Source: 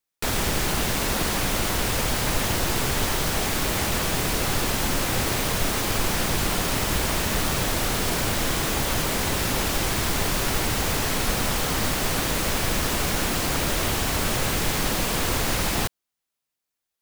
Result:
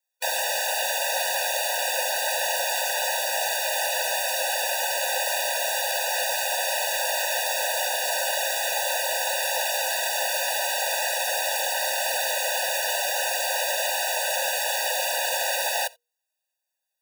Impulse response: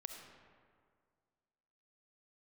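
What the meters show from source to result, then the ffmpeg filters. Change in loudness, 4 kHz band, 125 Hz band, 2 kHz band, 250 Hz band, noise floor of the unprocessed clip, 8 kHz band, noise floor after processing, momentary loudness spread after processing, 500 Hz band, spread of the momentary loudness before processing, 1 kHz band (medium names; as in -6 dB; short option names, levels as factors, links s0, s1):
0.0 dB, +0.5 dB, under -40 dB, +1.5 dB, under -40 dB, -84 dBFS, +0.5 dB, -83 dBFS, 0 LU, +0.5 dB, 0 LU, +0.5 dB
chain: -filter_complex "[0:a]bandreject=f=60:t=h:w=6,bandreject=f=120:t=h:w=6,bandreject=f=180:t=h:w=6,bandreject=f=240:t=h:w=6,bandreject=f=300:t=h:w=6,bandreject=f=360:t=h:w=6,bandreject=f=420:t=h:w=6,bandreject=f=480:t=h:w=6,asplit=2[s0][s1];[1:a]atrim=start_sample=2205,afade=t=out:st=0.3:d=0.01,atrim=end_sample=13671,atrim=end_sample=3969[s2];[s1][s2]afir=irnorm=-1:irlink=0,volume=0.398[s3];[s0][s3]amix=inputs=2:normalize=0,afftfilt=real='re*eq(mod(floor(b*sr/1024/490),2),1)':imag='im*eq(mod(floor(b*sr/1024/490),2),1)':win_size=1024:overlap=0.75,volume=1.26"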